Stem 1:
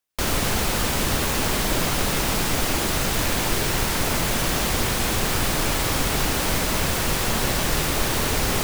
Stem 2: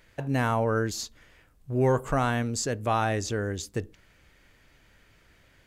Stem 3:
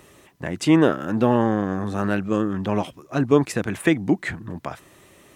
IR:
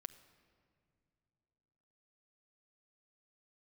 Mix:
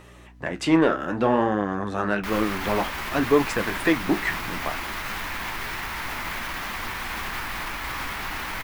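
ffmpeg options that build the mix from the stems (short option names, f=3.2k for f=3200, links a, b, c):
-filter_complex "[0:a]equalizer=f=125:t=o:w=1:g=-7,equalizer=f=500:t=o:w=1:g=-7,equalizer=f=1k:t=o:w=1:g=8,equalizer=f=2k:t=o:w=1:g=9,equalizer=f=8k:t=o:w=1:g=-7,adelay=2050,volume=-4.5dB[a];[2:a]asplit=2[b][c];[c]highpass=f=720:p=1,volume=13dB,asoftclip=type=tanh:threshold=-3dB[d];[b][d]amix=inputs=2:normalize=0,lowpass=f=2.6k:p=1,volume=-6dB,volume=0.5dB[e];[a]aeval=exprs='val(0)+0.00631*(sin(2*PI*60*n/s)+sin(2*PI*2*60*n/s)/2+sin(2*PI*3*60*n/s)/3+sin(2*PI*4*60*n/s)/4+sin(2*PI*5*60*n/s)/5)':c=same,alimiter=limit=-17.5dB:level=0:latency=1:release=53,volume=0dB[f];[e][f]amix=inputs=2:normalize=0,flanger=delay=9.6:depth=9:regen=-52:speed=0.59:shape=sinusoidal"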